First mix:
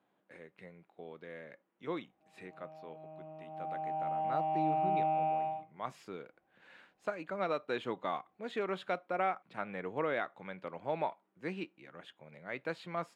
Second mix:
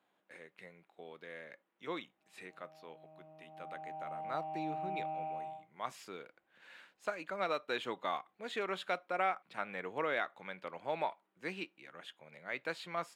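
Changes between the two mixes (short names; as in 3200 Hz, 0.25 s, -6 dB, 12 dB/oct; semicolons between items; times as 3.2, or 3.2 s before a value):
speech: add tilt +2.5 dB/oct; background -8.5 dB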